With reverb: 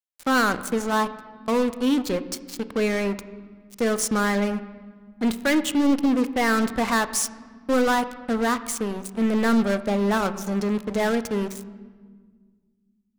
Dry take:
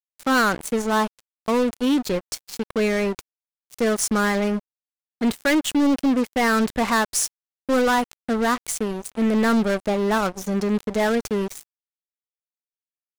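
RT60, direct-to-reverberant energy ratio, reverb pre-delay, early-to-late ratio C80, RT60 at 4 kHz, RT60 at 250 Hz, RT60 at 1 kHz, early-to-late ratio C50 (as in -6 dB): 1.7 s, 12.0 dB, 4 ms, 15.5 dB, 1.2 s, 2.8 s, 1.5 s, 14.0 dB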